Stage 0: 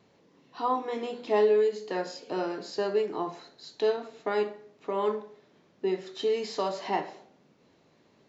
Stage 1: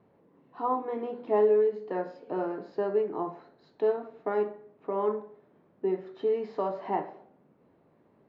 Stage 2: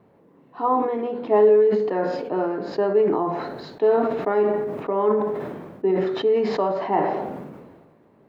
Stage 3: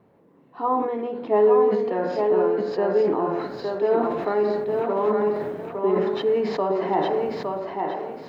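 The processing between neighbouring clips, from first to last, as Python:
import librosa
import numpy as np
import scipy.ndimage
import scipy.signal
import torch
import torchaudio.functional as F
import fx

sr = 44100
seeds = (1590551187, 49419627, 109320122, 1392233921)

y1 = scipy.signal.sosfilt(scipy.signal.butter(2, 1300.0, 'lowpass', fs=sr, output='sos'), x)
y2 = fx.sustainer(y1, sr, db_per_s=38.0)
y2 = F.gain(torch.from_numpy(y2), 7.0).numpy()
y3 = fx.echo_thinned(y2, sr, ms=861, feedback_pct=28, hz=210.0, wet_db=-3.5)
y3 = F.gain(torch.from_numpy(y3), -2.0).numpy()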